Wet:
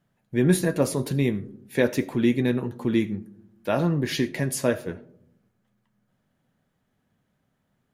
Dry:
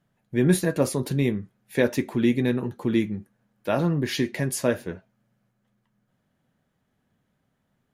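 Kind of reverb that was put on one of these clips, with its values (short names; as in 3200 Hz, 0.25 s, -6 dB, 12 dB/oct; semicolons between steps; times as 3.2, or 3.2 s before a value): digital reverb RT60 0.7 s, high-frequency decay 0.25×, pre-delay 35 ms, DRR 18 dB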